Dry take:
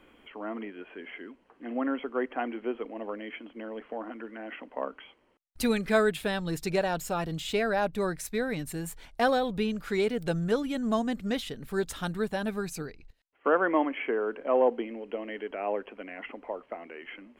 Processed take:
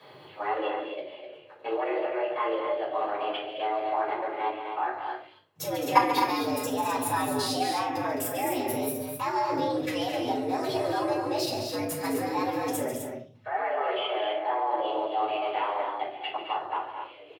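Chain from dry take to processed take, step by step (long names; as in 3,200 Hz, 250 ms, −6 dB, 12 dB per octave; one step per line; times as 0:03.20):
output level in coarse steps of 20 dB
formants moved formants +5 semitones
loudspeakers that aren't time-aligned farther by 48 metres −11 dB, 73 metres −9 dB, 88 metres −7 dB
frequency shifter +98 Hz
rectangular room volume 250 cubic metres, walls furnished, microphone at 5.6 metres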